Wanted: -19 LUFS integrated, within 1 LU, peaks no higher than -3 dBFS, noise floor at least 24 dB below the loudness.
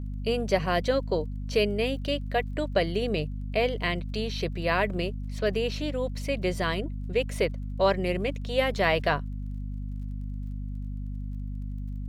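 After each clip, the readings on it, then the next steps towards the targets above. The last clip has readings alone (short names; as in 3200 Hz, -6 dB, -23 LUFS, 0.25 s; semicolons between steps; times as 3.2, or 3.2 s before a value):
ticks 30/s; hum 50 Hz; harmonics up to 250 Hz; hum level -31 dBFS; loudness -29.0 LUFS; peak -10.0 dBFS; loudness target -19.0 LUFS
-> de-click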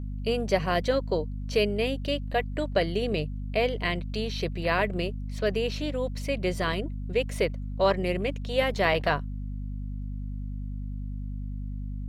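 ticks 0.50/s; hum 50 Hz; harmonics up to 250 Hz; hum level -31 dBFS
-> de-hum 50 Hz, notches 5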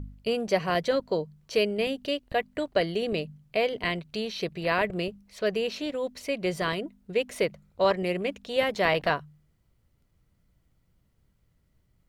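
hum none; loudness -28.5 LUFS; peak -9.5 dBFS; loudness target -19.0 LUFS
-> gain +9.5 dB; limiter -3 dBFS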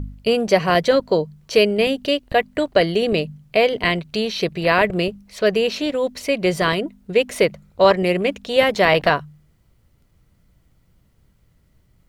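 loudness -19.0 LUFS; peak -3.0 dBFS; noise floor -60 dBFS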